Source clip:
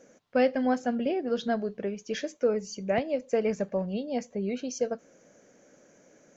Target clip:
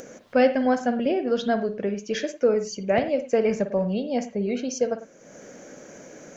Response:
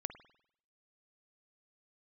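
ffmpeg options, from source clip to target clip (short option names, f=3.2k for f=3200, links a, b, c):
-filter_complex "[0:a]acompressor=mode=upward:threshold=-39dB:ratio=2.5[a];[1:a]atrim=start_sample=2205,atrim=end_sample=6174[b];[a][b]afir=irnorm=-1:irlink=0,volume=7dB"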